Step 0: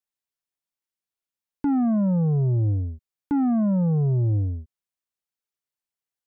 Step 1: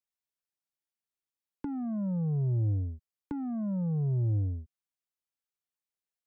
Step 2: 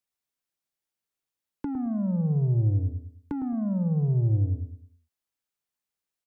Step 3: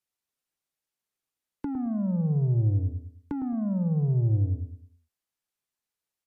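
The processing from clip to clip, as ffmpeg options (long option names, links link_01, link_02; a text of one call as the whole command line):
ffmpeg -i in.wav -filter_complex "[0:a]acrossover=split=150[link_01][link_02];[link_02]acompressor=threshold=-30dB:ratio=6[link_03];[link_01][link_03]amix=inputs=2:normalize=0,volume=-5.5dB" out.wav
ffmpeg -i in.wav -filter_complex "[0:a]asplit=2[link_01][link_02];[link_02]adelay=107,lowpass=frequency=870:poles=1,volume=-7dB,asplit=2[link_03][link_04];[link_04]adelay=107,lowpass=frequency=870:poles=1,volume=0.36,asplit=2[link_05][link_06];[link_06]adelay=107,lowpass=frequency=870:poles=1,volume=0.36,asplit=2[link_07][link_08];[link_08]adelay=107,lowpass=frequency=870:poles=1,volume=0.36[link_09];[link_01][link_03][link_05][link_07][link_09]amix=inputs=5:normalize=0,volume=4dB" out.wav
ffmpeg -i in.wav -ar 44100 -c:a libmp3lame -b:a 56k out.mp3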